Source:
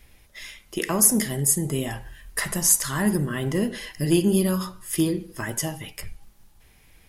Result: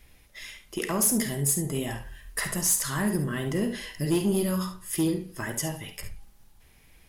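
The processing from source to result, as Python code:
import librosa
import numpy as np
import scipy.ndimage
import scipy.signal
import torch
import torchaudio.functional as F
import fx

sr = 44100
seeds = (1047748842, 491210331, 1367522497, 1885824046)

p1 = 10.0 ** (-15.0 / 20.0) * np.tanh(x / 10.0 ** (-15.0 / 20.0))
p2 = p1 + fx.room_early_taps(p1, sr, ms=(50, 71), db=(-12.0, -11.5), dry=0)
y = F.gain(torch.from_numpy(p2), -2.5).numpy()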